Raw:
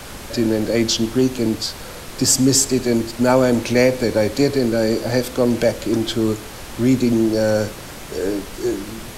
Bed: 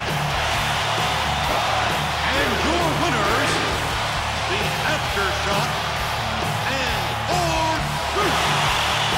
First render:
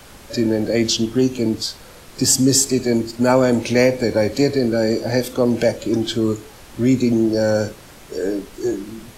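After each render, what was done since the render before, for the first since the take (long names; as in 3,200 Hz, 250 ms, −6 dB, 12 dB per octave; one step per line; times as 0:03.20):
noise reduction from a noise print 8 dB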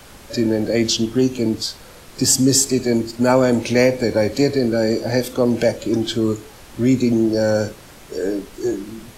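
no processing that can be heard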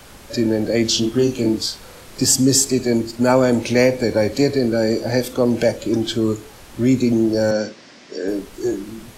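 0:00.90–0:02.25: double-tracking delay 33 ms −4.5 dB
0:07.51–0:08.28: loudspeaker in its box 240–6,200 Hz, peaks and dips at 240 Hz +7 dB, 440 Hz −4 dB, 850 Hz −5 dB, 1,300 Hz −4 dB, 1,900 Hz +3 dB, 5,100 Hz +5 dB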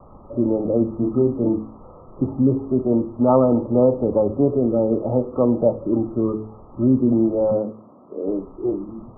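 Chebyshev low-pass filter 1,300 Hz, order 10
hum removal 54.29 Hz, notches 9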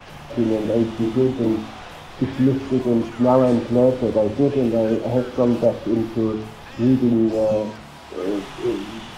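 mix in bed −17.5 dB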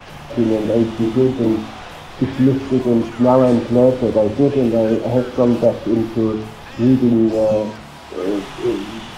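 level +3.5 dB
brickwall limiter −1 dBFS, peak gain reduction 1 dB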